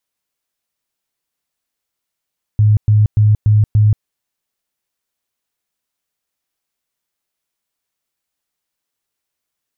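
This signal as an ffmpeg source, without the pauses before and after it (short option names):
-f lavfi -i "aevalsrc='0.447*sin(2*PI*106*mod(t,0.29))*lt(mod(t,0.29),19/106)':d=1.45:s=44100"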